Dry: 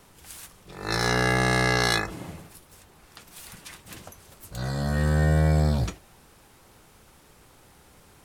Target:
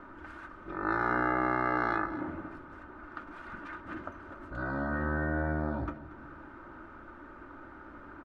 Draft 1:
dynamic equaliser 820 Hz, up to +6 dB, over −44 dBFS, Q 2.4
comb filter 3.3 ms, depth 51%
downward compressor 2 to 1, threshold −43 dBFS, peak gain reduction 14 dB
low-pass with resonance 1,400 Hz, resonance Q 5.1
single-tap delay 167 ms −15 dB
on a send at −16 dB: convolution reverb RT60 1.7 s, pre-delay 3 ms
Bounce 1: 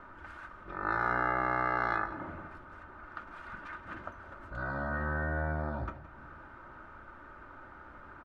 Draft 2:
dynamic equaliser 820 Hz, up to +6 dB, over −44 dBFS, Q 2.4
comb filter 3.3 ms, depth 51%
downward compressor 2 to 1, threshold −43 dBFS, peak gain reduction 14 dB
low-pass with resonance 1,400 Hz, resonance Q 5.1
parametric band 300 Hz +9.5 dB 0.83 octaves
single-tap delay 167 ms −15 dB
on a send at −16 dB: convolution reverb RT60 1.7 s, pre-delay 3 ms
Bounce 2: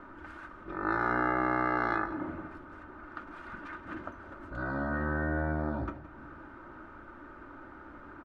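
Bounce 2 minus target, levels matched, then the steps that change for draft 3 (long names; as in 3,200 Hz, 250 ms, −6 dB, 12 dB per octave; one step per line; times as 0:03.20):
echo 65 ms early
change: single-tap delay 232 ms −15 dB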